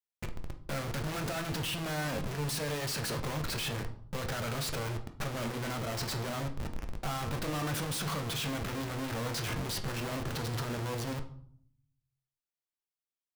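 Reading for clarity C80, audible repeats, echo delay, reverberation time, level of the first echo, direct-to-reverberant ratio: 16.0 dB, none, none, 0.60 s, none, 5.0 dB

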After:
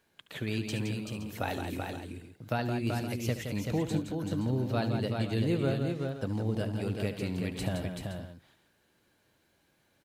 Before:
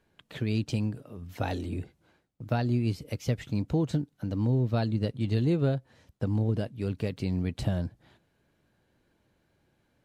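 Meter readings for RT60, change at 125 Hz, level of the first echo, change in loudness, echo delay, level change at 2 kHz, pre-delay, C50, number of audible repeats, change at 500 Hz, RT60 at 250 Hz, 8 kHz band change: none, -4.0 dB, -13.0 dB, -3.0 dB, 72 ms, +3.5 dB, none, none, 5, 0.0 dB, none, n/a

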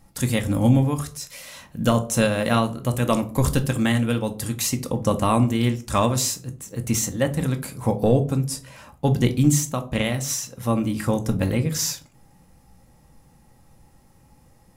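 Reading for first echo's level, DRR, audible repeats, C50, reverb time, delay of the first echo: none, 6.5 dB, none, 15.0 dB, 0.45 s, none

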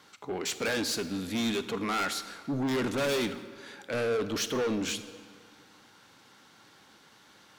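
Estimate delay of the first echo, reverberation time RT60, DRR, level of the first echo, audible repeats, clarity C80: none, 1.9 s, 11.0 dB, none, none, 13.0 dB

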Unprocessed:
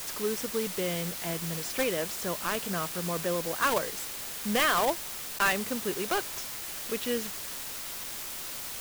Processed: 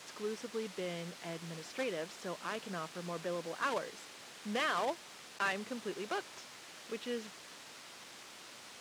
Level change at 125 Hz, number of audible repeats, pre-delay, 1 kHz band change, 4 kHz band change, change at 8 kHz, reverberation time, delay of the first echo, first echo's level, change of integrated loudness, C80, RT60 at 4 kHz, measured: -10.0 dB, none, none, -8.0 dB, -9.5 dB, -15.5 dB, none, none, none, -9.5 dB, none, none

